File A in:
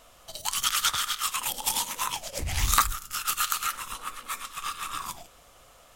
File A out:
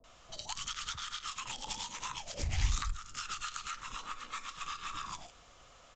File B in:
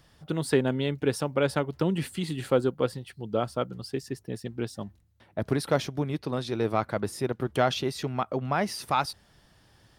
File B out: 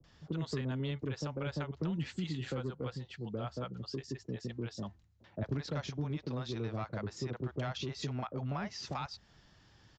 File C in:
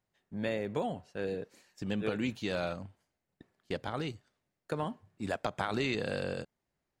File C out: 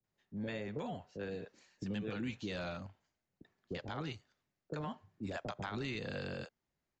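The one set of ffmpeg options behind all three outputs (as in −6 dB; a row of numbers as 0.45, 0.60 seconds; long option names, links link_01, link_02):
-filter_complex "[0:a]acrossover=split=570[link_01][link_02];[link_02]adelay=40[link_03];[link_01][link_03]amix=inputs=2:normalize=0,acrossover=split=220|1100[link_04][link_05][link_06];[link_05]asoftclip=type=tanh:threshold=-25dB[link_07];[link_04][link_07][link_06]amix=inputs=3:normalize=0,aresample=16000,aresample=44100,acrossover=split=160[link_08][link_09];[link_09]acompressor=threshold=-35dB:ratio=6[link_10];[link_08][link_10]amix=inputs=2:normalize=0,volume=-2.5dB"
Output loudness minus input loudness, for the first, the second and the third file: −11.5, −10.0, −6.5 LU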